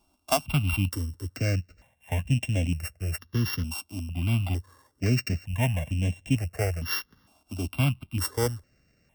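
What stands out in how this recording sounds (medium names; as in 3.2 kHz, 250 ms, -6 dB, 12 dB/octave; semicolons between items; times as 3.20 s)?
a buzz of ramps at a fixed pitch in blocks of 16 samples; notches that jump at a steady rate 2.2 Hz 500–4600 Hz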